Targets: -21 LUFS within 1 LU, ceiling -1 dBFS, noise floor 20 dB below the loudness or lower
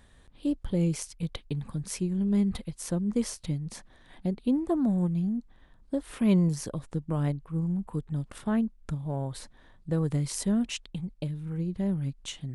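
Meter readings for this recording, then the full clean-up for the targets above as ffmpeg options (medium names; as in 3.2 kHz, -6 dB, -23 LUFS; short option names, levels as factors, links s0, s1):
loudness -30.5 LUFS; peak level -12.5 dBFS; loudness target -21.0 LUFS
-> -af "volume=2.99"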